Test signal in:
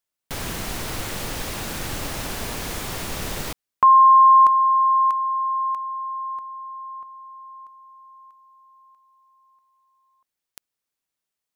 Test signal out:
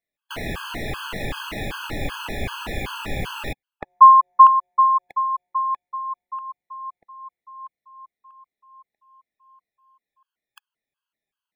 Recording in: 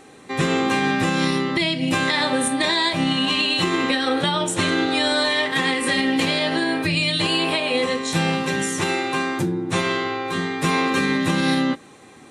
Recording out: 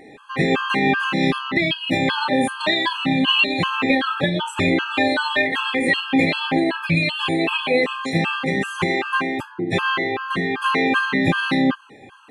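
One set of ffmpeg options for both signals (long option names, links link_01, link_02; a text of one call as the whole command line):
ffmpeg -i in.wav -af "afftfilt=real='re*pow(10,8/40*sin(2*PI*(1.9*log(max(b,1)*sr/1024/100)/log(2)-(-2.7)*(pts-256)/sr)))':imag='im*pow(10,8/40*sin(2*PI*(1.9*log(max(b,1)*sr/1024/100)/log(2)-(-2.7)*(pts-256)/sr)))':win_size=1024:overlap=0.75,highshelf=frequency=3900:width_type=q:width=1.5:gain=-10.5,afftfilt=real='re*gt(sin(2*PI*2.6*pts/sr)*(1-2*mod(floor(b*sr/1024/840),2)),0)':imag='im*gt(sin(2*PI*2.6*pts/sr)*(1-2*mod(floor(b*sr/1024/840),2)),0)':win_size=1024:overlap=0.75,volume=3dB" out.wav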